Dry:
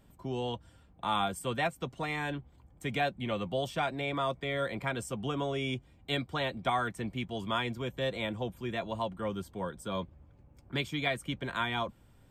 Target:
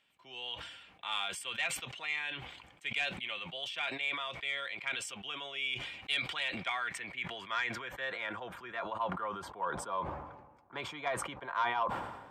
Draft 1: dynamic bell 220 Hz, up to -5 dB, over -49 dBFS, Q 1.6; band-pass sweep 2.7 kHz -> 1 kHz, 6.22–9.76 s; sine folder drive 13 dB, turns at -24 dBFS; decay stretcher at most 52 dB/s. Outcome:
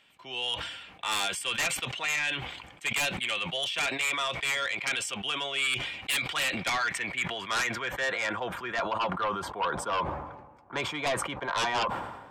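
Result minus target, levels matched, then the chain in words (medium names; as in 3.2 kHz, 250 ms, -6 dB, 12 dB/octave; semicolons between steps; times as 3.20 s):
sine folder: distortion +19 dB
dynamic bell 220 Hz, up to -5 dB, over -49 dBFS, Q 1.6; band-pass sweep 2.7 kHz -> 1 kHz, 6.22–9.76 s; sine folder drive 2 dB, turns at -24 dBFS; decay stretcher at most 52 dB/s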